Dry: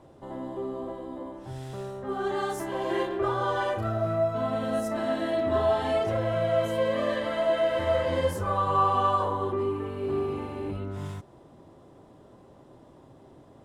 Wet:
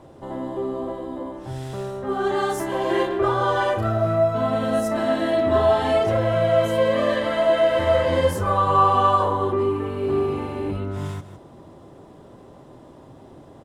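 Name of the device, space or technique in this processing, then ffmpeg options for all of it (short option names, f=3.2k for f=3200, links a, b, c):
ducked delay: -filter_complex "[0:a]asplit=3[a][b][c];[b]adelay=156,volume=-6dB[d];[c]apad=whole_len=608542[e];[d][e]sidechaincompress=threshold=-50dB:ratio=3:attack=7.6:release=197[f];[a][f]amix=inputs=2:normalize=0,volume=6.5dB"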